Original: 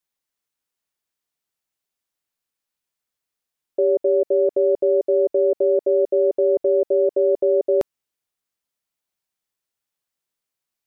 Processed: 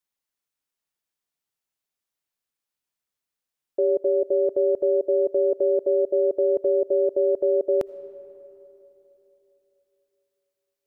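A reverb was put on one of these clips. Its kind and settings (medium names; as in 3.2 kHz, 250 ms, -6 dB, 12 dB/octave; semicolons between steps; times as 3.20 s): algorithmic reverb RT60 3.5 s, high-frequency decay 0.5×, pre-delay 40 ms, DRR 17 dB; trim -3 dB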